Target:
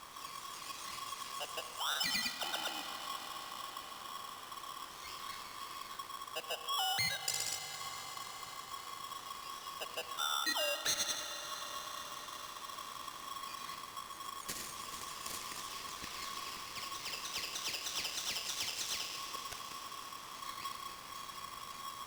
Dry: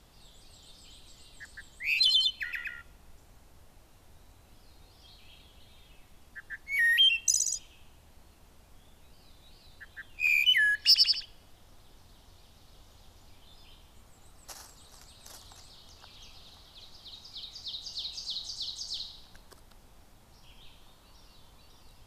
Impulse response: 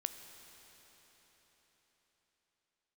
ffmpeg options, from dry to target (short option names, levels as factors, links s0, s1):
-filter_complex "[0:a]acompressor=threshold=0.00562:ratio=4[s0];[1:a]atrim=start_sample=2205,asetrate=23814,aresample=44100[s1];[s0][s1]afir=irnorm=-1:irlink=0,aeval=exprs='val(0)*sgn(sin(2*PI*1100*n/s))':c=same,volume=1.78"